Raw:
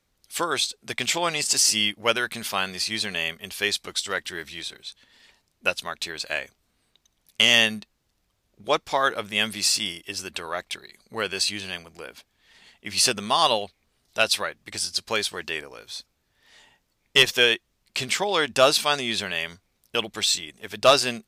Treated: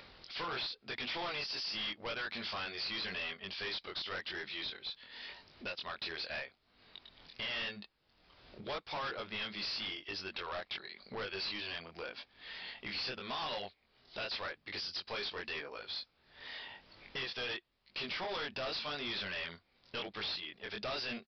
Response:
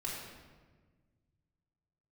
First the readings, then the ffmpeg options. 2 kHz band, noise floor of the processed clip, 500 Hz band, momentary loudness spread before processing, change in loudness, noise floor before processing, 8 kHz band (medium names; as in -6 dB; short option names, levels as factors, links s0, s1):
-14.0 dB, -74 dBFS, -17.5 dB, 17 LU, -16.0 dB, -72 dBFS, -35.0 dB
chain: -filter_complex "[0:a]flanger=delay=20:depth=4.5:speed=0.89,acompressor=mode=upward:threshold=0.0126:ratio=2.5,lowshelf=f=240:g=-9.5,asplit=2[s0][s1];[s1]acompressor=threshold=0.0112:ratio=6,volume=1[s2];[s0][s2]amix=inputs=2:normalize=0,alimiter=limit=0.188:level=0:latency=1:release=197,aresample=11025,volume=42.2,asoftclip=hard,volume=0.0237,aresample=44100,volume=0.631"